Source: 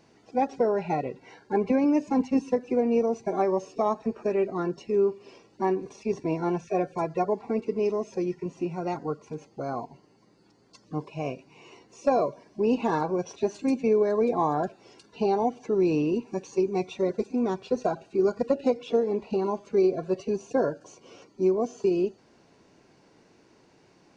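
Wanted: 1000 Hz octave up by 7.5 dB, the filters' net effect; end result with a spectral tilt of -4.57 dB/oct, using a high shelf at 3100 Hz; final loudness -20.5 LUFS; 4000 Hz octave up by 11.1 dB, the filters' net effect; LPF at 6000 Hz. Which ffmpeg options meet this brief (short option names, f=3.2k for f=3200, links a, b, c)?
-af "lowpass=6k,equalizer=f=1k:t=o:g=9,highshelf=f=3.1k:g=8.5,equalizer=f=4k:t=o:g=8,volume=4dB"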